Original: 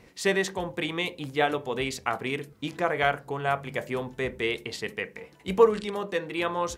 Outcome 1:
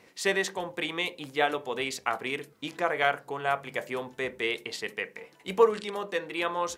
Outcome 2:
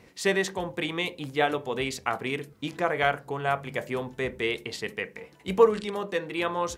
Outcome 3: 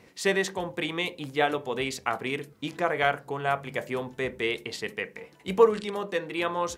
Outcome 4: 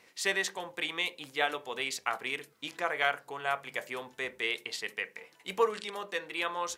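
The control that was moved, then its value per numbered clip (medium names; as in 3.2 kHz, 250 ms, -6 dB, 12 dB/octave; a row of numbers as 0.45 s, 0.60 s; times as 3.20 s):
high-pass, cutoff frequency: 400 Hz, 43 Hz, 110 Hz, 1.3 kHz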